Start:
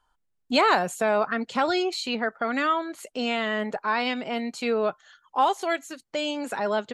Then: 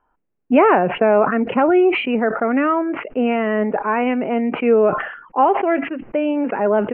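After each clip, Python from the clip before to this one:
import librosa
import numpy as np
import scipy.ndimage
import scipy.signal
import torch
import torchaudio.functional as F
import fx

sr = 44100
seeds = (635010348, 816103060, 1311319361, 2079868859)

y = scipy.signal.sosfilt(scipy.signal.butter(16, 2800.0, 'lowpass', fs=sr, output='sos'), x)
y = fx.peak_eq(y, sr, hz=340.0, db=12.5, octaves=2.6)
y = fx.sustainer(y, sr, db_per_s=81.0)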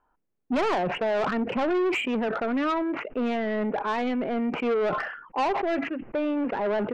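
y = 10.0 ** (-17.5 / 20.0) * np.tanh(x / 10.0 ** (-17.5 / 20.0))
y = y * 10.0 ** (-4.0 / 20.0)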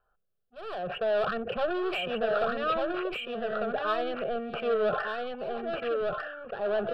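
y = fx.auto_swell(x, sr, attack_ms=611.0)
y = fx.fixed_phaser(y, sr, hz=1400.0, stages=8)
y = y + 10.0 ** (-3.0 / 20.0) * np.pad(y, (int(1198 * sr / 1000.0), 0))[:len(y)]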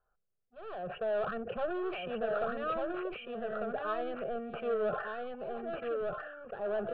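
y = fx.air_absorb(x, sr, metres=420.0)
y = y * 10.0 ** (-4.0 / 20.0)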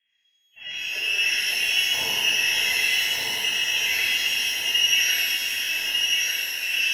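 y = fx.echo_split(x, sr, split_hz=1200.0, low_ms=98, high_ms=549, feedback_pct=52, wet_db=-6.0)
y = fx.freq_invert(y, sr, carrier_hz=3300)
y = fx.rev_shimmer(y, sr, seeds[0], rt60_s=2.0, semitones=12, shimmer_db=-8, drr_db=-10.0)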